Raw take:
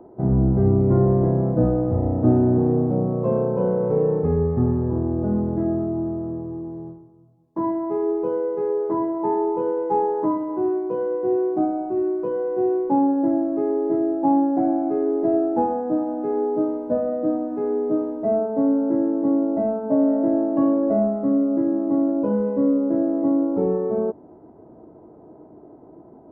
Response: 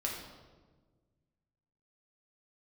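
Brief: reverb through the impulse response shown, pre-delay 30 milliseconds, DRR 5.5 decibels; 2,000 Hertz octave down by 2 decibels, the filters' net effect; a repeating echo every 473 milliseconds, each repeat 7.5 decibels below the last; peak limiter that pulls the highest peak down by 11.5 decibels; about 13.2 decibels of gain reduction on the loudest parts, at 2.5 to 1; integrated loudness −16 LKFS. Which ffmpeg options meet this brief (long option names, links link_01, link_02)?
-filter_complex "[0:a]equalizer=frequency=2000:width_type=o:gain=-3,acompressor=threshold=-34dB:ratio=2.5,alimiter=level_in=7dB:limit=-24dB:level=0:latency=1,volume=-7dB,aecho=1:1:473|946|1419|1892|2365:0.422|0.177|0.0744|0.0312|0.0131,asplit=2[link_01][link_02];[1:a]atrim=start_sample=2205,adelay=30[link_03];[link_02][link_03]afir=irnorm=-1:irlink=0,volume=-8.5dB[link_04];[link_01][link_04]amix=inputs=2:normalize=0,volume=20.5dB"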